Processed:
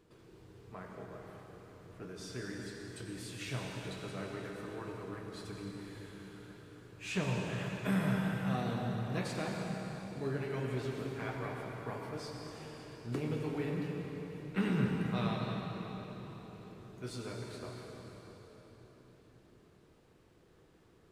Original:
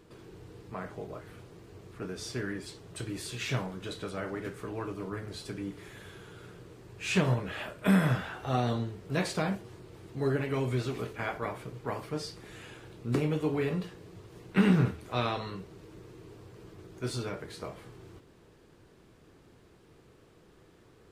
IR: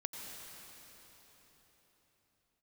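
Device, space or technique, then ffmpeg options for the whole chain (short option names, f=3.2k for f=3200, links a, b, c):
cathedral: -filter_complex "[1:a]atrim=start_sample=2205[a];[0:a][a]afir=irnorm=-1:irlink=0,volume=-5.5dB"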